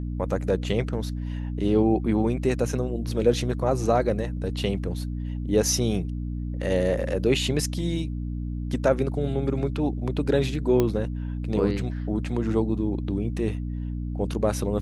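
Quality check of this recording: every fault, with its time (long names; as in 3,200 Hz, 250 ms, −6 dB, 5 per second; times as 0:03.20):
mains hum 60 Hz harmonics 5 −30 dBFS
0:10.80: click −10 dBFS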